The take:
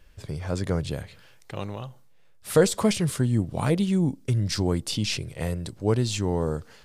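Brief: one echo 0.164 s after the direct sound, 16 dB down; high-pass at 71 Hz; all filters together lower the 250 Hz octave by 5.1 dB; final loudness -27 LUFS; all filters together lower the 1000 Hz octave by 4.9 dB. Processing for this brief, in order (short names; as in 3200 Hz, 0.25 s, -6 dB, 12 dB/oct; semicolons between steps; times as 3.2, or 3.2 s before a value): HPF 71 Hz; bell 250 Hz -7.5 dB; bell 1000 Hz -6 dB; echo 0.164 s -16 dB; gain +2 dB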